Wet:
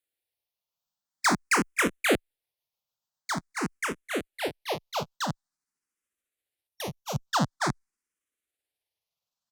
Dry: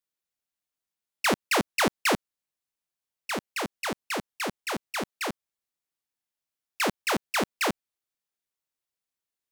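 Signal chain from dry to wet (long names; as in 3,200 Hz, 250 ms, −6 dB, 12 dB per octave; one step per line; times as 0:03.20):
pitch glide at a constant tempo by −9 semitones starting unshifted
gain on a spectral selection 0:06.67–0:07.26, 240–5,500 Hz −9 dB
frequency shifter mixed with the dry sound +0.47 Hz
level +4.5 dB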